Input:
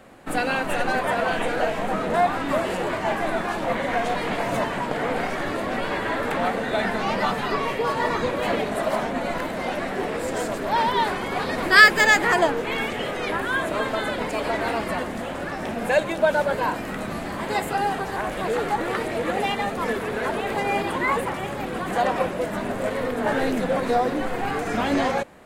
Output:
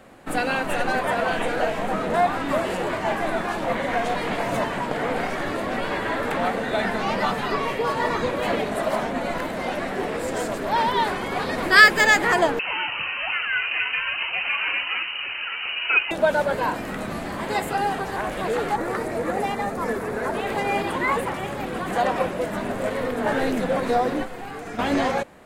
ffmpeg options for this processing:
ffmpeg -i in.wav -filter_complex "[0:a]asettb=1/sr,asplit=3[link_01][link_02][link_03];[link_01]atrim=end=12.594[link_04];[link_02]atrim=start=12.59:end=16.11,asetpts=PTS-STARTPTS,afade=type=in:duration=0.004:curve=qsin,afade=type=out:start_time=3.516:duration=0.004:curve=qsin,lowpass=frequency=2600:width_type=q:width=0.5098,lowpass=frequency=2600:width_type=q:width=0.6013,lowpass=frequency=2600:width_type=q:width=0.9,lowpass=frequency=2600:width_type=q:width=2.563,afreqshift=-3100[link_05];[link_03]atrim=start=16.106[link_06];[link_04][link_05]acrossfade=duration=0.004:curve1=hsin:curve2=qsin[link_07];[link_07][link_06]acrossfade=duration=0.004:curve1=qsin:curve2=hsin,asettb=1/sr,asplit=3[link_08][link_09][link_10];[link_08]atrim=end=18.764[link_11];[link_09]atrim=start=18.76:end=20.35,asetpts=PTS-STARTPTS,afade=type=in:duration=0.004:curve=qsin,afade=type=out:start_time=1.586:duration=0.004:curve=qsin,equalizer=frequency=3100:width=1.6:gain=-10[link_12];[link_10]atrim=start=20.346[link_13];[link_11][link_12]acrossfade=duration=0.004:curve1=hsin:curve2=qsin[link_14];[link_14][link_13]acrossfade=duration=0.004:curve1=qsin:curve2=hsin,asettb=1/sr,asplit=3[link_15][link_16][link_17];[link_15]atrim=end=24.234[link_18];[link_16]atrim=start=24.23:end=24.79,asetpts=PTS-STARTPTS,afade=type=in:duration=0.004:curve=qsin,afade=type=out:start_time=0.556:duration=0.004:curve=qsin,acrossover=split=3200|7200[link_19][link_20][link_21];[link_19]acompressor=threshold=-33dB:ratio=4[link_22];[link_20]acompressor=threshold=-54dB:ratio=4[link_23];[link_21]acompressor=threshold=-58dB:ratio=4[link_24];[link_22][link_23][link_24]amix=inputs=3:normalize=0[link_25];[link_17]atrim=start=24.786[link_26];[link_18][link_25]acrossfade=duration=0.004:curve1=hsin:curve2=qsin[link_27];[link_27][link_26]acrossfade=duration=0.004:curve1=qsin:curve2=hsin" out.wav

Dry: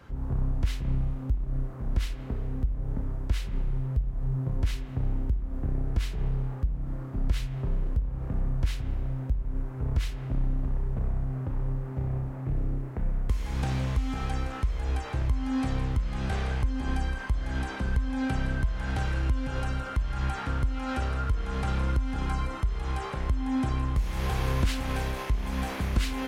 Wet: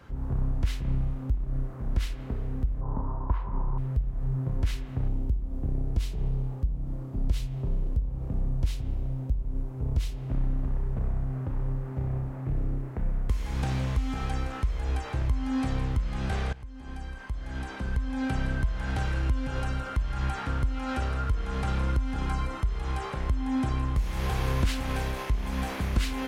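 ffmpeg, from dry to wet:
ffmpeg -i in.wav -filter_complex "[0:a]asettb=1/sr,asplit=3[link_01][link_02][link_03];[link_01]atrim=end=2.814[link_04];[link_02]atrim=start=2.81:end=3.78,asetpts=PTS-STARTPTS,afade=type=in:duration=0.004:curve=qsin,afade=type=out:start_time=0.966:duration=0.004:curve=qsin,lowpass=frequency=1000:width_type=q:width=9.2[link_05];[link_03]atrim=start=3.776[link_06];[link_04][link_05]acrossfade=duration=0.004:curve1=hsin:curve2=qsin[link_07];[link_07][link_06]acrossfade=duration=0.004:curve1=qsin:curve2=hsin,asettb=1/sr,asplit=3[link_08][link_09][link_10];[link_08]atrim=end=5.084[link_11];[link_09]atrim=start=5.08:end=10.29,asetpts=PTS-STARTPTS,afade=type=in:duration=0.004:curve=qsin,afade=type=out:start_time=5.206:duration=0.004:curve=qsin,equalizer=frequency=1600:width=1:gain=-9.5[link_12];[link_10]atrim=start=10.286[link_13];[link_11][link_12]acrossfade=duration=0.004:curve1=hsin:curve2=qsin[link_14];[link_14][link_13]acrossfade=duration=0.004:curve1=qsin:curve2=hsin,asplit=2[link_15][link_16];[link_15]atrim=end=16.53,asetpts=PTS-STARTPTS,afade=type=out:start_time=16.526:duration=0.004:curve=hsin:silence=0.11885[link_17];[link_16]atrim=start=16.53,asetpts=PTS-STARTPTS,afade=type=in:duration=1.88:silence=0.11885[link_18];[link_17][link_18]concat=n=2:v=0:a=1" out.wav

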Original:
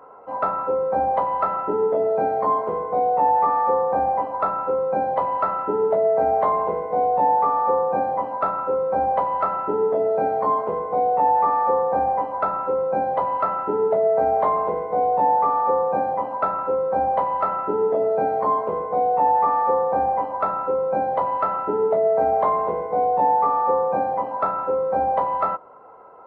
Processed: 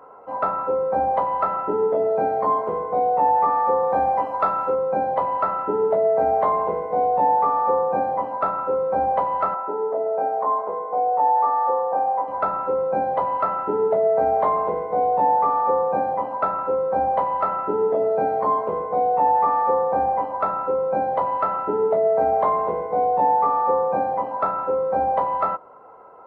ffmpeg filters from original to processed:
ffmpeg -i in.wav -filter_complex "[0:a]asettb=1/sr,asplit=3[link_01][link_02][link_03];[link_01]atrim=end=3.834[link_04];[link_02]atrim=start=3.83:end=4.75,asetpts=PTS-STARTPTS,afade=type=in:duration=0.004:curve=qsin,afade=type=out:start_time=0.916:duration=0.004:curve=qsin,highshelf=frequency=2200:gain=8.5[link_05];[link_03]atrim=start=4.746[link_06];[link_04][link_05]acrossfade=duration=0.004:curve1=hsin:curve2=qsin[link_07];[link_07][link_06]acrossfade=duration=0.004:curve1=qsin:curve2=hsin,asettb=1/sr,asplit=3[link_08][link_09][link_10];[link_08]atrim=end=9.544[link_11];[link_09]atrim=start=9.54:end=12.28,asetpts=PTS-STARTPTS,afade=type=in:duration=0.004:curve=qsin,afade=type=out:start_time=2.736:duration=0.004:curve=qsin,bandpass=frequency=830:width_type=q:width=0.95[link_12];[link_10]atrim=start=12.276[link_13];[link_11][link_12]acrossfade=duration=0.004:curve1=hsin:curve2=qsin[link_14];[link_14][link_13]acrossfade=duration=0.004:curve1=qsin:curve2=hsin" out.wav

